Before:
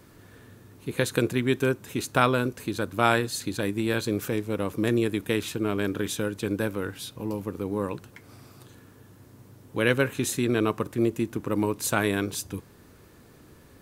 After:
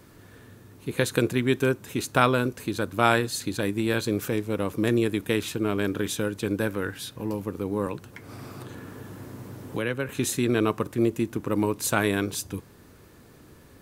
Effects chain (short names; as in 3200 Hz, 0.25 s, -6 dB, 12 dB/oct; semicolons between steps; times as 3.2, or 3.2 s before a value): 6.66–7.35 bell 1700 Hz +7 dB 0.33 oct; 7.86–10.09 three-band squash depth 70%; gain +1 dB